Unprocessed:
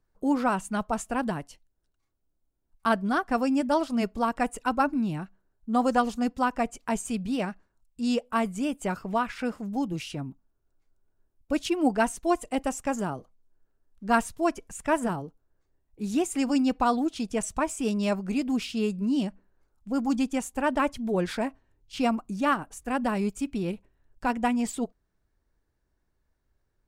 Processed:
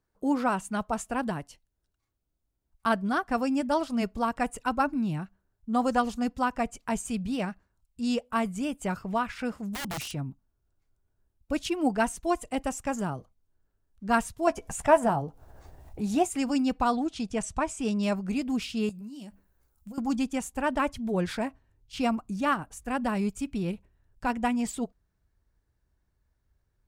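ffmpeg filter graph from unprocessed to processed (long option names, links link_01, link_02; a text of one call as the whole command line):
ffmpeg -i in.wav -filter_complex "[0:a]asettb=1/sr,asplit=3[link_01][link_02][link_03];[link_01]atrim=end=9.634[link_04];[link_02]atrim=start=9.63:end=10.14,asetpts=PTS-STARTPTS,afade=type=in:duration=0.004:curve=qsin,afade=type=out:start_time=0.506:duration=0.004:curve=qsin,equalizer=frequency=9900:width=0.54:gain=7.5,aeval=exprs='(mod(23.7*val(0)+1,2)-1)/23.7':channel_layout=same[link_05];[link_03]atrim=start=10.136[link_06];[link_04][link_05]acrossfade=duration=0.004:curve1=hsin:curve2=qsin[link_07];[link_07][link_06]acrossfade=duration=0.004:curve1=qsin:curve2=hsin,asettb=1/sr,asplit=3[link_08][link_09][link_10];[link_08]atrim=end=14.474[link_11];[link_09]atrim=start=14.47:end=16.29,asetpts=PTS-STARTPTS,afade=type=in:duration=0.004:curve=qsin,afade=type=out:start_time=1.816:duration=0.004:curve=qsin,equalizer=frequency=740:width=1.7:gain=11.5,asplit=2[link_12][link_13];[link_13]adelay=14,volume=-11.5dB[link_14];[link_12][link_14]amix=inputs=2:normalize=0,atrim=end_sample=80262,acompressor=mode=upward:threshold=-26dB:ratio=2.5:attack=3.2:release=140:knee=2.83:detection=peak[link_15];[link_10]atrim=start=16.286[link_16];[link_11][link_15]acrossfade=duration=0.004:curve1=hsin:curve2=qsin[link_17];[link_17][link_16]acrossfade=duration=0.004:curve1=qsin:curve2=hsin,asettb=1/sr,asplit=3[link_18][link_19][link_20];[link_18]atrim=end=16.924[link_21];[link_19]atrim=start=16.92:end=18.03,asetpts=PTS-STARTPTS,afade=type=in:duration=0.004:curve=qsin,afade=type=out:start_time=1.106:duration=0.004:curve=qsin,lowpass=8800,equalizer=frequency=770:width_type=o:width=0.25:gain=3[link_22];[link_20]atrim=start=18.026[link_23];[link_21][link_22]acrossfade=duration=0.004:curve1=hsin:curve2=qsin[link_24];[link_24][link_23]acrossfade=duration=0.004:curve1=qsin:curve2=hsin,asettb=1/sr,asplit=3[link_25][link_26][link_27];[link_25]atrim=end=18.894[link_28];[link_26]atrim=start=18.89:end=19.98,asetpts=PTS-STARTPTS,afade=type=in:duration=0.004:curve=qsin,afade=type=out:start_time=1.086:duration=0.004:curve=qsin,aemphasis=mode=production:type=50fm,acompressor=threshold=-38dB:ratio=16:attack=3.2:release=140:knee=1:detection=peak,asplit=2[link_29][link_30];[link_30]adelay=14,volume=-11dB[link_31];[link_29][link_31]amix=inputs=2:normalize=0,atrim=end_sample=48069[link_32];[link_27]atrim=start=19.976[link_33];[link_28][link_32]acrossfade=duration=0.004:curve1=hsin:curve2=qsin[link_34];[link_34][link_33]acrossfade=duration=0.004:curve1=qsin:curve2=hsin,highpass=frequency=64:poles=1,asubboost=boost=2.5:cutoff=160,volume=-1dB" out.wav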